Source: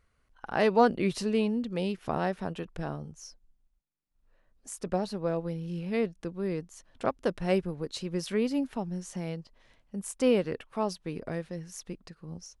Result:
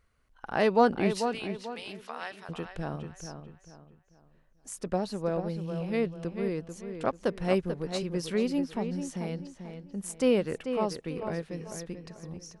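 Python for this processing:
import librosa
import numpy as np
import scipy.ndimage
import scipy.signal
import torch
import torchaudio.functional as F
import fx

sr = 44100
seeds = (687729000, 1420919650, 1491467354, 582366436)

p1 = fx.highpass(x, sr, hz=1300.0, slope=12, at=(1.17, 2.49))
y = p1 + fx.echo_filtered(p1, sr, ms=440, feedback_pct=34, hz=3800.0, wet_db=-8.0, dry=0)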